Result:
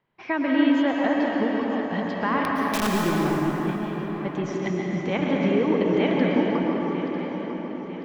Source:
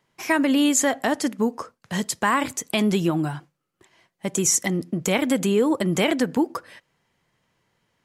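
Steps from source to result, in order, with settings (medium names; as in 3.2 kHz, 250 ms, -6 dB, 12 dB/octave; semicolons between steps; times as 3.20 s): backward echo that repeats 474 ms, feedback 69%, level -9 dB; Bessel low-pass 2.5 kHz, order 8; 2.43–2.87 s: integer overflow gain 15 dB; plate-style reverb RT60 4.3 s, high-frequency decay 0.5×, pre-delay 100 ms, DRR -2 dB; trim -4.5 dB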